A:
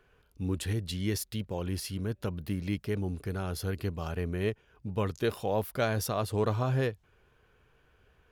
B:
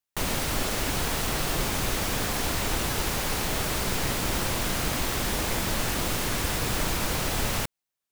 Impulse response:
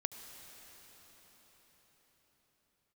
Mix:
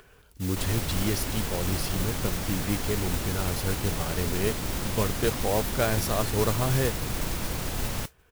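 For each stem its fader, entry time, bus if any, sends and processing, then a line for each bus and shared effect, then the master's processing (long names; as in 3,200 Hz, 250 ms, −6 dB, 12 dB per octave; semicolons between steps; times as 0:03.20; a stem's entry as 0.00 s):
+2.5 dB, 0.00 s, no send, no processing
−7.5 dB, 0.40 s, no send, low-shelf EQ 360 Hz +7 dB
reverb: not used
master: upward compression, threshold −48 dBFS; noise that follows the level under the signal 11 dB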